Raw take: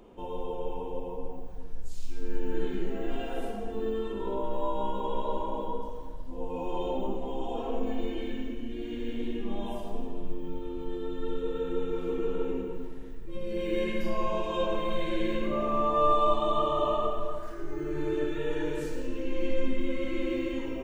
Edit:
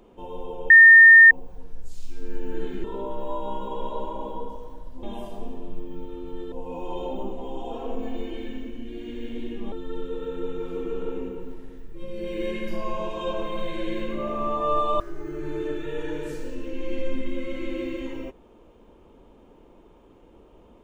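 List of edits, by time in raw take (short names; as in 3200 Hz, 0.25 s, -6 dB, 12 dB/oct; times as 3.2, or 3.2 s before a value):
0.7–1.31 bleep 1820 Hz -6.5 dBFS
2.84–4.17 cut
9.56–11.05 move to 6.36
16.33–17.52 cut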